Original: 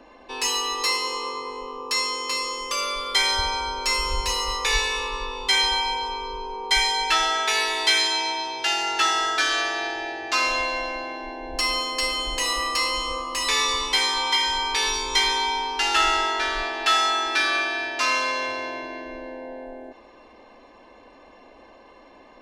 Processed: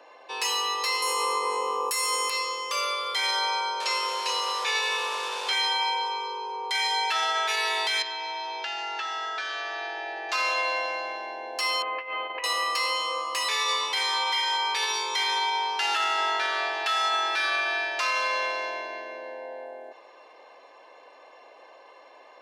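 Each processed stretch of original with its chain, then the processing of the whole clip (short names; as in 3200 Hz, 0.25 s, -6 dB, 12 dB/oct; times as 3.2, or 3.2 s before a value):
1.02–2.3 resonant high shelf 6800 Hz +13.5 dB, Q 1.5 + fast leveller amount 50%
3.8–5.53 delta modulation 64 kbps, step -24.5 dBFS + LPF 7100 Hz + notch 2000 Hz, Q 11
8.02–10.29 air absorption 150 m + compressor 5:1, threshold -29 dBFS
11.82–12.44 elliptic low-pass 2500 Hz, stop band 80 dB + negative-ratio compressor -31 dBFS, ratio -0.5
whole clip: HPF 450 Hz 24 dB/oct; dynamic EQ 7100 Hz, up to -5 dB, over -40 dBFS, Q 1.1; limiter -17 dBFS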